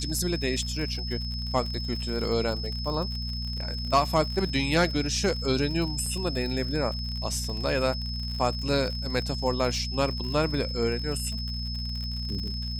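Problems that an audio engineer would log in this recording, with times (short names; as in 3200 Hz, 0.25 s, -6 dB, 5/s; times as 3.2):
crackle 71/s -33 dBFS
hum 60 Hz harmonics 4 -33 dBFS
tone 5200 Hz -35 dBFS
6.06 gap 3.3 ms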